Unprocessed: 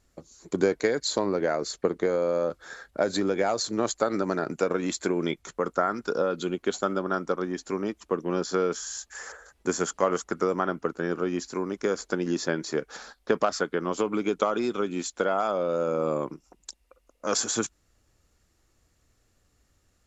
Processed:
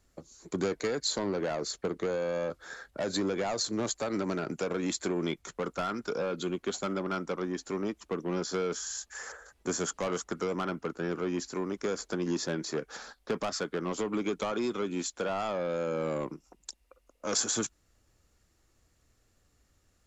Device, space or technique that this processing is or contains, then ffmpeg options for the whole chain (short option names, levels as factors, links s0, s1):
one-band saturation: -filter_complex "[0:a]acrossover=split=240|3000[s0][s1][s2];[s1]asoftclip=type=tanh:threshold=0.0447[s3];[s0][s3][s2]amix=inputs=3:normalize=0,volume=0.841"